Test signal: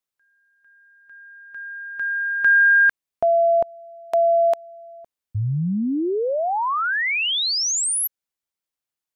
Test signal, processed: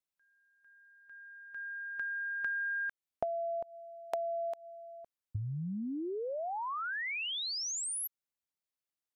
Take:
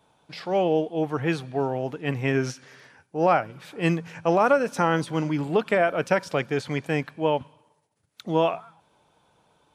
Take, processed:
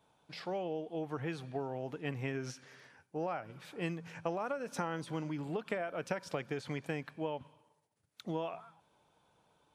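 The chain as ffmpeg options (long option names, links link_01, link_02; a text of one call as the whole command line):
ffmpeg -i in.wav -af "acompressor=threshold=-30dB:ratio=4:attack=36:release=260:knee=1:detection=peak,volume=-7.5dB" out.wav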